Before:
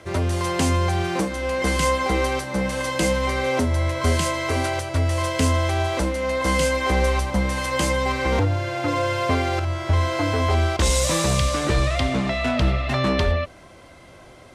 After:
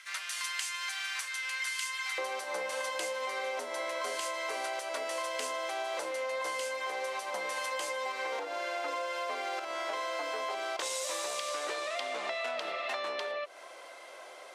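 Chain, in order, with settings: octaver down 2 oct, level -3 dB; HPF 1500 Hz 24 dB/oct, from 2.18 s 490 Hz; compressor 12:1, threshold -32 dBFS, peak gain reduction 13.5 dB

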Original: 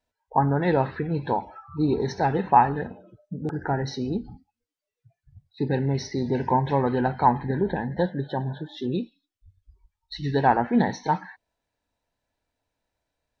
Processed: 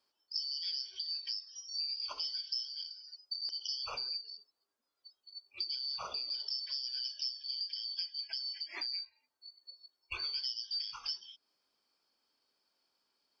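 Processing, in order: four-band scrambler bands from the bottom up 4321; band shelf 620 Hz +10.5 dB 2.7 oct; compressor 6:1, threshold -37 dBFS, peak gain reduction 23.5 dB

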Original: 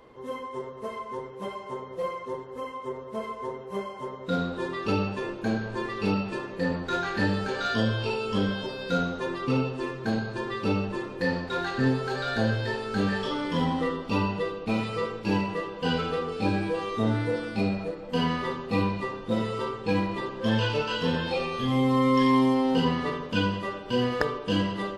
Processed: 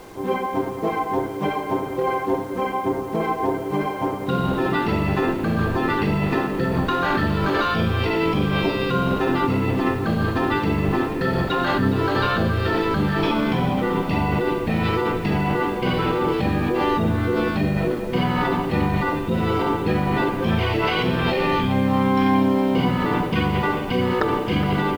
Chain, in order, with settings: LPF 4200 Hz 12 dB/oct; notch 560 Hz, Q 12; in parallel at +1.5 dB: negative-ratio compressor -32 dBFS, ratio -0.5; on the sum: harmoniser -5 st 0 dB; bit-crush 8-bit; on a send: echo 0.416 s -14 dB

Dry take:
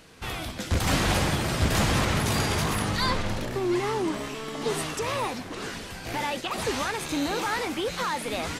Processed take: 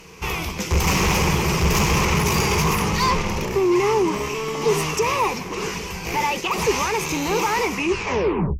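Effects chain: tape stop at the end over 0.94 s; sine folder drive 6 dB, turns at -12.5 dBFS; ripple EQ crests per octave 0.78, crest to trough 11 dB; gain -3.5 dB

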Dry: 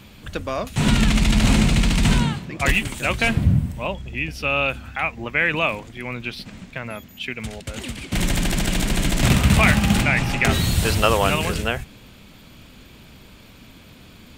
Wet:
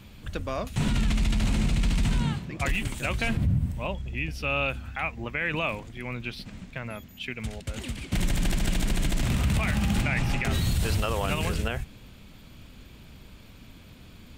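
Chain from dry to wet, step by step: low shelf 120 Hz +8 dB; limiter -11 dBFS, peak gain reduction 11 dB; gain -6 dB

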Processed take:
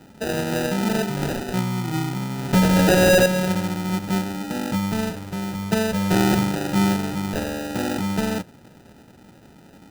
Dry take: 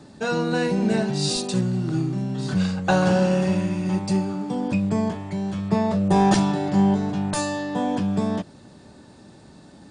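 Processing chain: 2.53–3.26 overdrive pedal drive 38 dB, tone 1100 Hz, clips at -7 dBFS; sample-rate reducer 1100 Hz, jitter 0%; gain -1 dB

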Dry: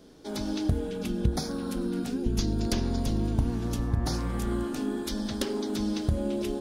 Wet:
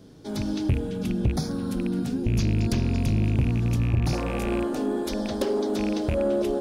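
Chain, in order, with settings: rattling part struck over -27 dBFS, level -24 dBFS; bell 120 Hz +12.5 dB 1.4 oct, from 4.13 s 570 Hz; soft clip -15.5 dBFS, distortion -12 dB

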